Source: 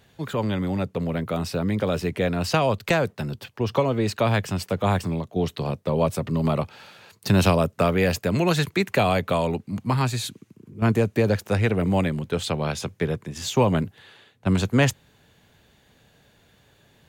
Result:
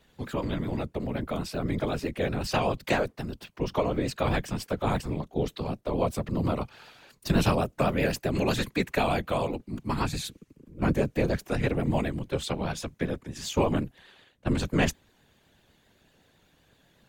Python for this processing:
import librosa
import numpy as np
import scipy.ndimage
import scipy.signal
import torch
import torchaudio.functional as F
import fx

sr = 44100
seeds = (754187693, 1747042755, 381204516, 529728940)

y = fx.vibrato(x, sr, rate_hz=7.9, depth_cents=62.0)
y = fx.whisperise(y, sr, seeds[0])
y = y * librosa.db_to_amplitude(-5.0)